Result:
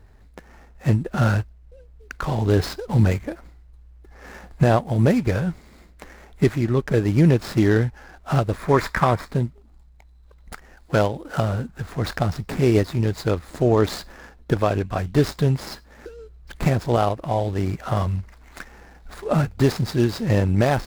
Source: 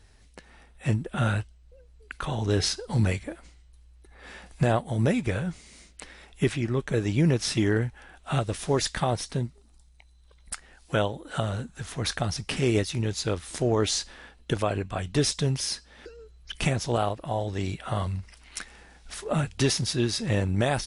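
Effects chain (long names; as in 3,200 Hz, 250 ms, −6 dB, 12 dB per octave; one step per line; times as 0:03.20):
running median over 15 samples
gain on a spectral selection 0:08.56–0:09.28, 910–2,500 Hz +7 dB
level +6.5 dB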